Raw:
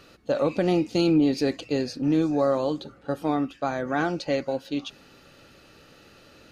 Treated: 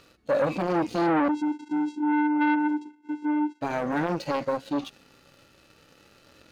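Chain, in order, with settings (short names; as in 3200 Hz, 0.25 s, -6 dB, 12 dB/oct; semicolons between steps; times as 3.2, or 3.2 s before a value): harmonic-percussive split percussive -12 dB; sample leveller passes 2; 1.28–3.61 vocoder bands 4, square 299 Hz; core saturation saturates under 930 Hz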